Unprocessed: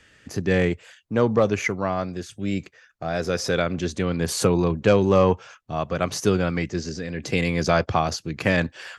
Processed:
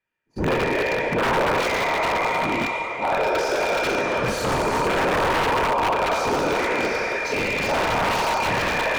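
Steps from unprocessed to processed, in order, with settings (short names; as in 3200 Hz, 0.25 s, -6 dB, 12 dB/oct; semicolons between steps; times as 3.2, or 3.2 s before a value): spectral trails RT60 2.68 s; spectral noise reduction 23 dB; bell 90 Hz +6 dB 0.29 oct; sample leveller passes 3; limiter -9.5 dBFS, peak gain reduction 8 dB; on a send: split-band echo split 550 Hz, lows 0.559 s, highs 0.424 s, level -11 dB; on the sum: whisperiser; small resonant body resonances 930/2400 Hz, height 18 dB, ringing for 80 ms; wrapped overs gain 7 dB; overdrive pedal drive 13 dB, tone 1000 Hz, clips at -7 dBFS; gain -5 dB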